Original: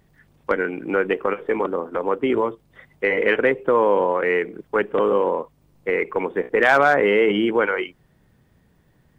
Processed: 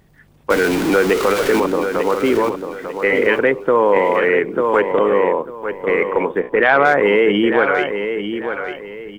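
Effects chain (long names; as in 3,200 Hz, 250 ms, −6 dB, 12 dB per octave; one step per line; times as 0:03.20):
0:00.50–0:01.60: converter with a step at zero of −21 dBFS
in parallel at −1 dB: brickwall limiter −15 dBFS, peak gain reduction 9.5 dB
0:06.40–0:06.85: on the sum: low-pass filter 3,700 Hz 24 dB per octave
repeating echo 895 ms, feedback 31%, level −8 dB
0:03.96–0:04.92: multiband upward and downward compressor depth 100%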